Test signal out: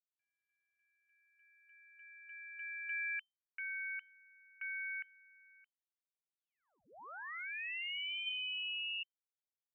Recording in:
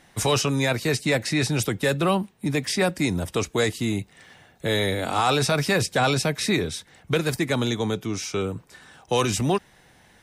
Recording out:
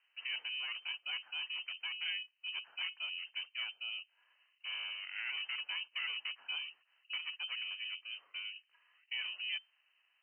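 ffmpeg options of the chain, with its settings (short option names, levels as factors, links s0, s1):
-af "aeval=exprs='val(0)*sin(2*PI*340*n/s)':c=same,lowpass=f=2600:t=q:w=0.5098,lowpass=f=2600:t=q:w=0.6013,lowpass=f=2600:t=q:w=0.9,lowpass=f=2600:t=q:w=2.563,afreqshift=-3100,aderivative,volume=0.501"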